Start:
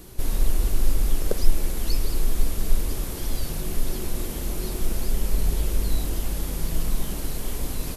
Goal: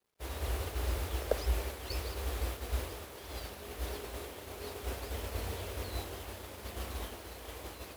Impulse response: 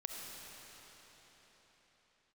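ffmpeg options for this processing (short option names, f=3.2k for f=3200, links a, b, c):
-filter_complex "[0:a]afreqshift=45,acrossover=split=380 4000:gain=0.112 1 0.251[a][b][c];[a][b][c]amix=inputs=3:normalize=0,areverse,acompressor=mode=upward:threshold=-43dB:ratio=2.5,areverse,acrusher=bits=7:mix=0:aa=0.000001,agate=range=-33dB:threshold=-33dB:ratio=3:detection=peak"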